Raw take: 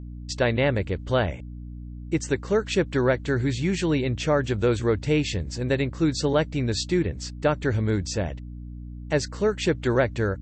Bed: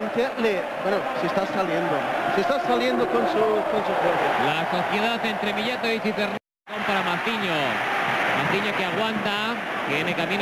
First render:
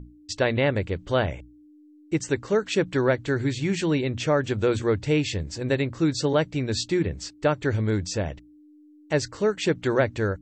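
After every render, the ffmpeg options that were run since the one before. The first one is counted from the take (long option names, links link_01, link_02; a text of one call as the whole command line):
ffmpeg -i in.wav -af "bandreject=frequency=60:width_type=h:width=6,bandreject=frequency=120:width_type=h:width=6,bandreject=frequency=180:width_type=h:width=6,bandreject=frequency=240:width_type=h:width=6" out.wav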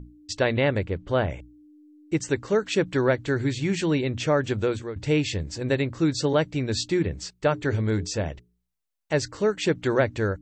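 ffmpeg -i in.wav -filter_complex "[0:a]asettb=1/sr,asplit=3[link_01][link_02][link_03];[link_01]atrim=end=0.834[link_04];[link_02]atrim=start=0.83:end=1.3,asetpts=PTS-STARTPTS,afade=type=in:duration=0.004:curve=qsin,afade=type=out:start_time=0.466:duration=0.004:curve=qsin,highshelf=frequency=3600:gain=-11.5[link_05];[link_03]atrim=start=1.296[link_06];[link_04][link_05]acrossfade=duration=0.004:curve1=hsin:curve2=qsin[link_07];[link_07][link_06]acrossfade=duration=0.004:curve1=qsin:curve2=hsin,asplit=3[link_08][link_09][link_10];[link_08]afade=type=out:start_time=7.21:duration=0.02[link_11];[link_09]bandreject=frequency=60:width_type=h:width=6,bandreject=frequency=120:width_type=h:width=6,bandreject=frequency=180:width_type=h:width=6,bandreject=frequency=240:width_type=h:width=6,bandreject=frequency=300:width_type=h:width=6,bandreject=frequency=360:width_type=h:width=6,bandreject=frequency=420:width_type=h:width=6,afade=type=in:start_time=7.21:duration=0.02,afade=type=out:start_time=9.16:duration=0.02[link_12];[link_10]afade=type=in:start_time=9.16:duration=0.02[link_13];[link_11][link_12][link_13]amix=inputs=3:normalize=0,asplit=2[link_14][link_15];[link_14]atrim=end=4.96,asetpts=PTS-STARTPTS,afade=type=out:start_time=4.56:duration=0.4:silence=0.149624[link_16];[link_15]atrim=start=4.96,asetpts=PTS-STARTPTS,afade=type=in:duration=0.004:curve=hsin:silence=0.149624[link_17];[link_16][link_17]concat=n=2:v=0:a=1" out.wav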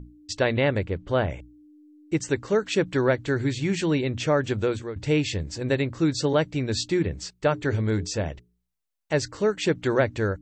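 ffmpeg -i in.wav -af anull out.wav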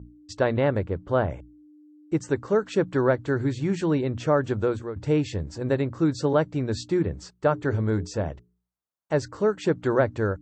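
ffmpeg -i in.wav -af "highpass=53,highshelf=frequency=1700:width_type=q:width=1.5:gain=-7.5" out.wav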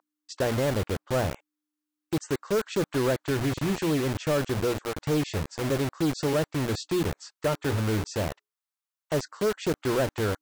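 ffmpeg -i in.wav -filter_complex "[0:a]acrossover=split=840[link_01][link_02];[link_01]acrusher=bits=4:mix=0:aa=0.000001[link_03];[link_03][link_02]amix=inputs=2:normalize=0,asoftclip=type=tanh:threshold=-19.5dB" out.wav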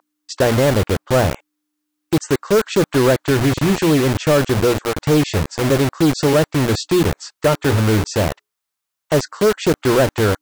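ffmpeg -i in.wav -af "volume=11dB" out.wav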